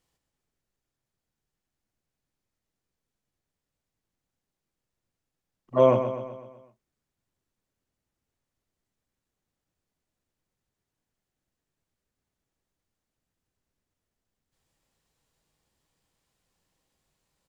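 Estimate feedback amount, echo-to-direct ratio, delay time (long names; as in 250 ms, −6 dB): 53%, −7.5 dB, 126 ms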